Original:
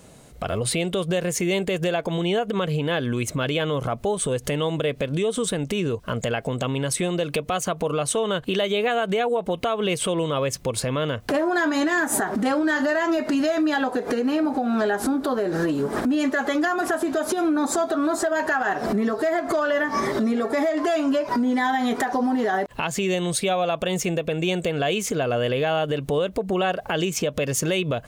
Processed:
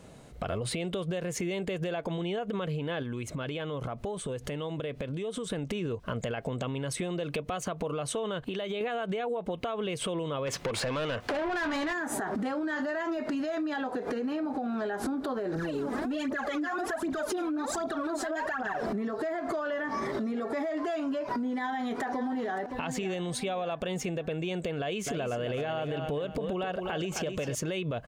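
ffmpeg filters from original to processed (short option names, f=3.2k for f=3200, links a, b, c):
-filter_complex "[0:a]asettb=1/sr,asplit=3[a][b][c];[a]atrim=end=3.024[d];[b]atrim=start=3.02:end=5.5,asetpts=PTS-STARTPTS,afade=t=in:d=0.004:c=qsin,afade=t=out:st=2.476:d=0.004:c=qsin,acompressor=threshold=-28dB:ratio=6:attack=3.2:release=140:knee=1:detection=peak[e];[c]atrim=start=5.496[f];[d][e]acrossfade=d=0.004:c1=hsin:c2=qsin[g];[g][f]acrossfade=d=0.004:c1=qsin:c2=hsin,asettb=1/sr,asplit=3[h][i][j];[h]atrim=end=8.404[k];[i]atrim=start=8.4:end=8.81,asetpts=PTS-STARTPTS,afade=t=in:d=0.004:c=qsin,afade=t=out:st=0.406:d=0.004:c=qsin,acompressor=threshold=-27dB:ratio=6:attack=3.2:release=140:knee=1:detection=peak[l];[j]atrim=start=8.806[m];[k][l]acrossfade=d=0.004:c1=hsin:c2=qsin[n];[n][m]acrossfade=d=0.004:c1=qsin:c2=hsin,asplit=3[o][p][q];[o]afade=t=out:st=10.46:d=0.02[r];[p]asplit=2[s][t];[t]highpass=f=720:p=1,volume=22dB,asoftclip=type=tanh:threshold=-12dB[u];[s][u]amix=inputs=2:normalize=0,lowpass=f=4.7k:p=1,volume=-6dB,afade=t=in:st=10.46:d=0.02,afade=t=out:st=11.92:d=0.02[v];[q]afade=t=in:st=11.92:d=0.02[w];[r][v][w]amix=inputs=3:normalize=0,asettb=1/sr,asplit=3[x][y][z];[x]atrim=end=15.554[aa];[y]atrim=start=15.55:end=18.83,asetpts=PTS-STARTPTS,afade=t=in:d=0.004:c=qsin,afade=t=out:st=3.276:d=0.004:c=qsin,aphaser=in_gain=1:out_gain=1:delay=4.1:decay=0.73:speed=1.3:type=triangular[ab];[z]atrim=start=18.826[ac];[aa][ab]acrossfade=d=0.004:c1=hsin:c2=qsin[ad];[ad][ac]acrossfade=d=0.004:c1=qsin:c2=hsin,asplit=2[ae][af];[af]afade=t=in:st=21.52:d=0.01,afade=t=out:st=22.57:d=0.01,aecho=0:1:570|1140|1710|2280:0.237137|0.0948549|0.037942|0.0151768[ag];[ae][ag]amix=inputs=2:normalize=0,asettb=1/sr,asplit=3[ah][ai][aj];[ah]atrim=end=24.804[ak];[ai]atrim=start=24.8:end=27.55,asetpts=PTS-STARTPTS,afade=t=in:d=0.004:c=qsin,afade=t=out:st=2.746:d=0.004:c=qsin,aecho=1:1:263|526|789:0.355|0.106|0.0319,atrim=end_sample=121275[al];[aj]atrim=start=27.546[am];[ak][al]acrossfade=d=0.004:c1=hsin:c2=qsin[an];[an][am]acrossfade=d=0.004:c1=qsin:c2=hsin,highshelf=f=6.2k:g=-11,alimiter=limit=-18.5dB:level=0:latency=1:release=33,acompressor=threshold=-27dB:ratio=6,volume=-2dB"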